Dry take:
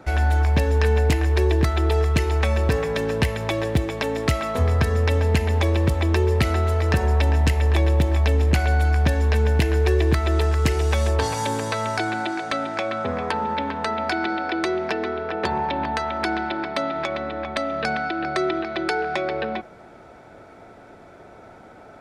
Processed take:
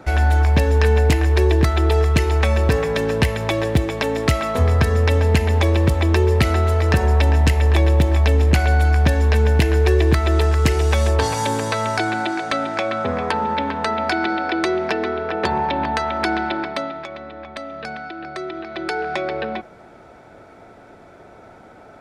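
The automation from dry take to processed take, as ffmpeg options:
ffmpeg -i in.wav -af "volume=11dB,afade=type=out:start_time=16.54:duration=0.49:silence=0.316228,afade=type=in:start_time=18.51:duration=0.59:silence=0.421697" out.wav

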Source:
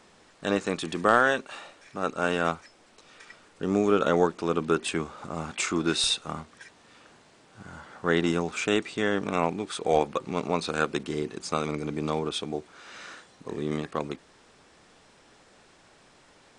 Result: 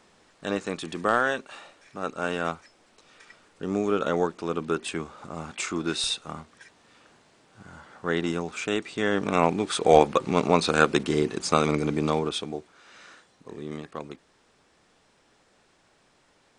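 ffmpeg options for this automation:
ffmpeg -i in.wav -af "volume=6.5dB,afade=type=in:start_time=8.81:duration=0.95:silence=0.354813,afade=type=out:start_time=11.77:duration=0.97:silence=0.237137" out.wav

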